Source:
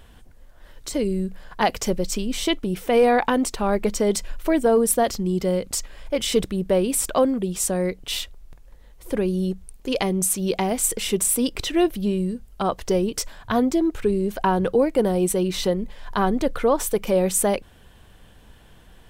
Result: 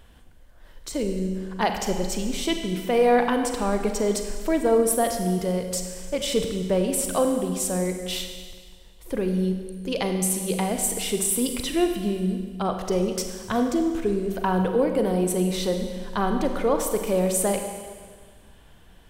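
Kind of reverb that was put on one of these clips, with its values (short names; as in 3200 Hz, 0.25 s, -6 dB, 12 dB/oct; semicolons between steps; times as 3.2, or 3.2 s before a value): Schroeder reverb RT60 1.7 s, combs from 33 ms, DRR 5 dB; gain -3.5 dB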